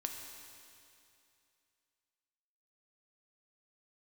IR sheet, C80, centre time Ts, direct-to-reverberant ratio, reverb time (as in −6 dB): 5.0 dB, 70 ms, 2.5 dB, 2.6 s